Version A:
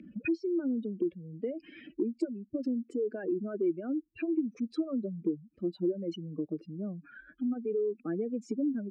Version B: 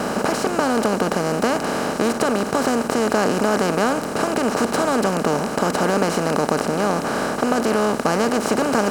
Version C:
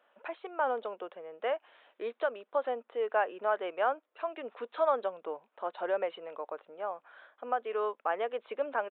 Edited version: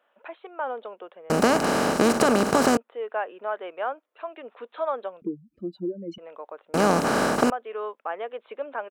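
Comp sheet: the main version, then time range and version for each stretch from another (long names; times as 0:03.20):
C
0:01.30–0:02.77: punch in from B
0:05.22–0:06.18: punch in from A
0:06.74–0:07.50: punch in from B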